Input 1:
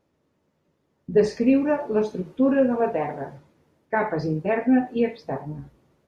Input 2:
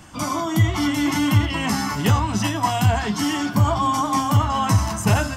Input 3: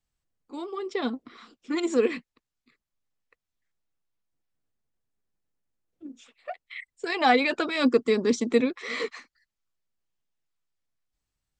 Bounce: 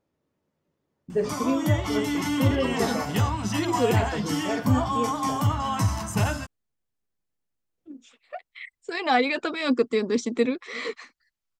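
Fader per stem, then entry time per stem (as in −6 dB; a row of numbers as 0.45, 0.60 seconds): −7.0, −6.0, −1.0 decibels; 0.00, 1.10, 1.85 seconds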